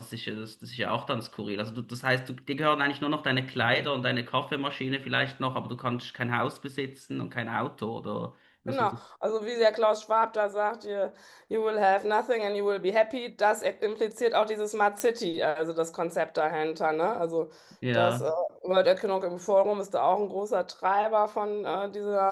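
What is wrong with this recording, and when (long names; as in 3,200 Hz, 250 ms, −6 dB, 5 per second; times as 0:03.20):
0:15.00: click −13 dBFS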